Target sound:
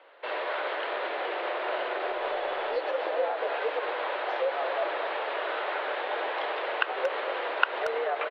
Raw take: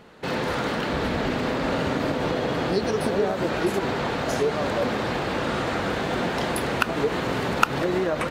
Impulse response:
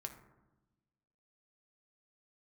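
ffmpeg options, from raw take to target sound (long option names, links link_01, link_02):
-filter_complex "[0:a]highpass=frequency=350:width_type=q:width=0.5412,highpass=frequency=350:width_type=q:width=1.307,lowpass=frequency=3500:width_type=q:width=0.5176,lowpass=frequency=3500:width_type=q:width=0.7071,lowpass=frequency=3500:width_type=q:width=1.932,afreqshift=97,asplit=2[link_01][link_02];[link_02]adelay=230,highpass=300,lowpass=3400,asoftclip=type=hard:threshold=-10dB,volume=-11dB[link_03];[link_01][link_03]amix=inputs=2:normalize=0,asettb=1/sr,asplit=3[link_04][link_05][link_06];[link_04]atrim=end=2.084[link_07];[link_05]atrim=start=2.08:end=2.77,asetpts=PTS-STARTPTS,afade=type=in:duration=0.004:curve=qsin,afade=type=out:start_time=0.686:duration=0.004:curve=qsin,aeval=exprs='0.178*(cos(1*acos(clip(val(0)/0.178,-1,1)))-cos(1*PI/2))+0.002*(cos(4*acos(clip(val(0)/0.178,-1,1)))-cos(4*PI/2))':channel_layout=same[link_08];[link_06]atrim=start=2.766[link_09];[link_07][link_08]acrossfade=duration=0.004:curve1=hsin:curve2=qsin[link_10];[link_10][link_09]acrossfade=duration=0.004:curve1=qsin:curve2=hsin,volume=-4dB"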